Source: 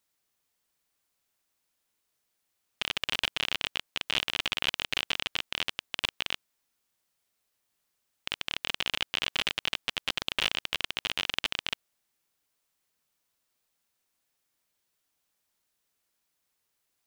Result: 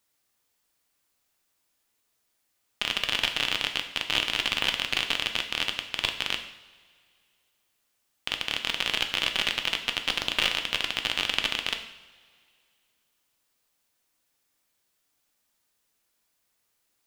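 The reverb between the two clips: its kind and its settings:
coupled-rooms reverb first 0.7 s, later 2.4 s, from −18 dB, DRR 5 dB
level +3 dB

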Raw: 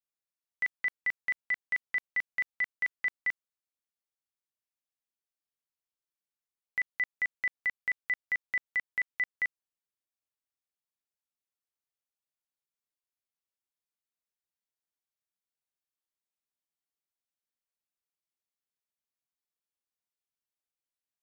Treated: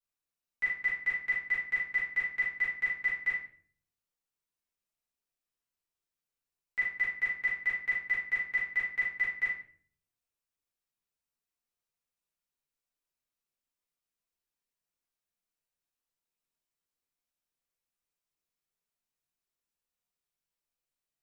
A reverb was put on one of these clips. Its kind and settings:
rectangular room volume 52 cubic metres, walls mixed, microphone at 1.8 metres
level −7 dB

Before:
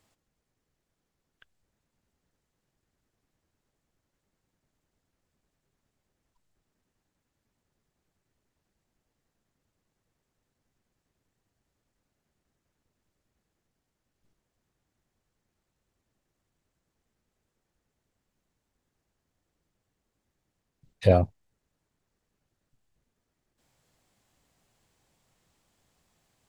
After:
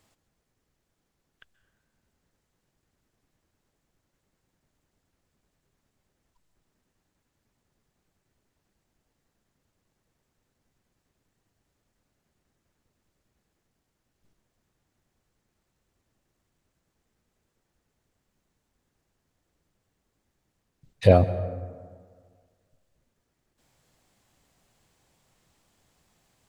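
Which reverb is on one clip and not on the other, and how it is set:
dense smooth reverb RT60 1.8 s, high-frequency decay 0.45×, pre-delay 115 ms, DRR 14 dB
level +3.5 dB

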